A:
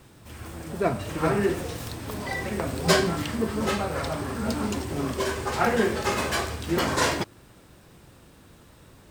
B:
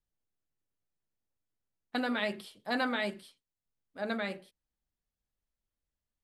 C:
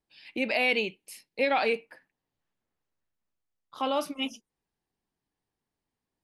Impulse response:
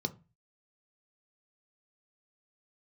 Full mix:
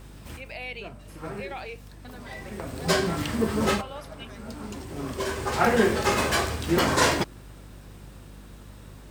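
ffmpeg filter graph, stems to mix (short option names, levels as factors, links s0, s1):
-filter_complex "[0:a]volume=1.33[s0];[1:a]adelay=100,volume=0.2[s1];[2:a]highpass=450,volume=0.282,asplit=2[s2][s3];[s3]apad=whole_len=401552[s4];[s0][s4]sidechaincompress=threshold=0.00224:ratio=12:attack=16:release=1280[s5];[s5][s1][s2]amix=inputs=3:normalize=0,aeval=exprs='val(0)+0.00562*(sin(2*PI*50*n/s)+sin(2*PI*2*50*n/s)/2+sin(2*PI*3*50*n/s)/3+sin(2*PI*4*50*n/s)/4+sin(2*PI*5*50*n/s)/5)':c=same"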